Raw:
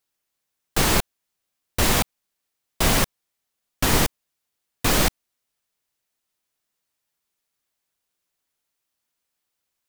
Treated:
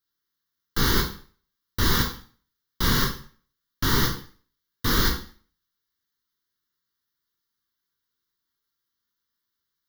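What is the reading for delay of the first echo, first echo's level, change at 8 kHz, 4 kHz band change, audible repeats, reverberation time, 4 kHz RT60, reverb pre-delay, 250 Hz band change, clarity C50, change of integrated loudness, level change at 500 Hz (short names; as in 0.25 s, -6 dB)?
none, none, -7.5 dB, -1.0 dB, none, 0.45 s, 0.40 s, 6 ms, -1.5 dB, 7.5 dB, -2.5 dB, -5.5 dB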